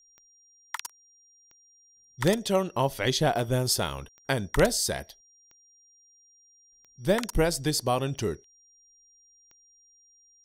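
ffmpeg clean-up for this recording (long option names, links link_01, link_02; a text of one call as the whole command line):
ffmpeg -i in.wav -af "adeclick=threshold=4,bandreject=frequency=5700:width=30" out.wav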